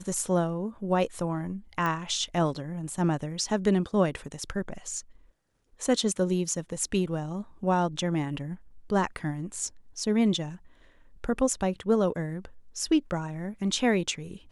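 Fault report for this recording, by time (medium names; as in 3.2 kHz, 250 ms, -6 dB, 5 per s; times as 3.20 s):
1.86 s: pop -18 dBFS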